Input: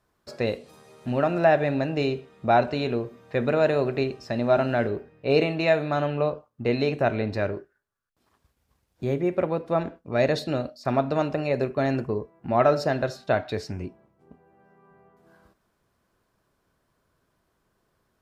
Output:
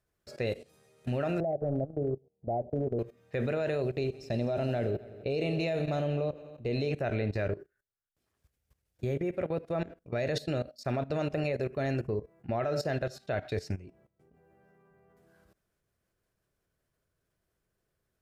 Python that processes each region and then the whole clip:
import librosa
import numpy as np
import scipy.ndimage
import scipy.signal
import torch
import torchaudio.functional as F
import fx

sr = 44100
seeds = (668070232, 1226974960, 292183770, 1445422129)

y = fx.chain(x, sr, fx.steep_lowpass(hz=790.0, slope=48),
    fx.transient(attack_db=-3, sustain_db=-11), at=(1.4, 2.99))
y = fx.chain(y, sr, fx.peak_eq(hz=1600.0, db=-9.0, octaves=1.3),
    fx.echo_heads(ms=86, heads='all three', feedback_pct=42, wet_db=-20), at=(3.82, 6.91))
y = fx.graphic_eq_10(y, sr, hz=(250, 1000, 4000), db=(-7, -11, -4))
y = fx.level_steps(y, sr, step_db=17)
y = y * 10.0 ** (4.0 / 20.0)